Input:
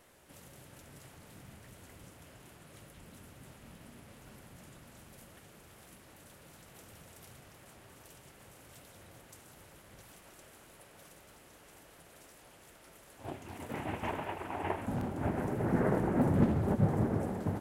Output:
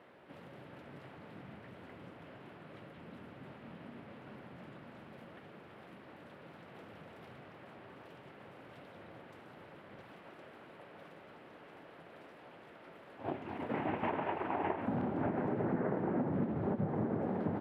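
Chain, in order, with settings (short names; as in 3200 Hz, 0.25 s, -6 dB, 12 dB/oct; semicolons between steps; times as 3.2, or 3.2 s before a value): HPF 170 Hz 12 dB/oct; air absorption 420 m; compressor 10:1, threshold -37 dBFS, peak gain reduction 14 dB; gain +6.5 dB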